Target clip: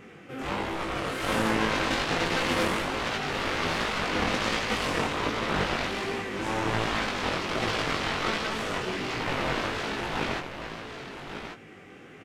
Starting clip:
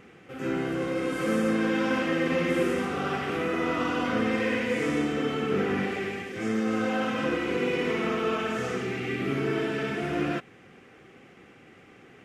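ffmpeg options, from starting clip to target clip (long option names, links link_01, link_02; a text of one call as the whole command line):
ffmpeg -i in.wav -af "aeval=exprs='0.188*(cos(1*acos(clip(val(0)/0.188,-1,1)))-cos(1*PI/2))+0.0841*(cos(7*acos(clip(val(0)/0.188,-1,1)))-cos(7*PI/2))':channel_layout=same,aecho=1:1:1140:0.355,flanger=delay=17.5:depth=4.4:speed=1.3" out.wav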